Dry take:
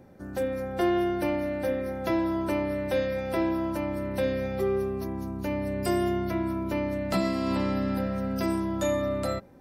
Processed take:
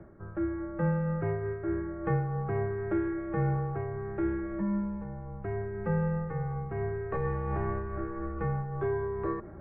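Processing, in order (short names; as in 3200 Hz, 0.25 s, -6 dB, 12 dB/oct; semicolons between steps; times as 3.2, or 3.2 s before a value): reverse; upward compressor, threshold -30 dBFS; reverse; mistuned SSB -190 Hz 250–2000 Hz; noise-modulated level, depth 55%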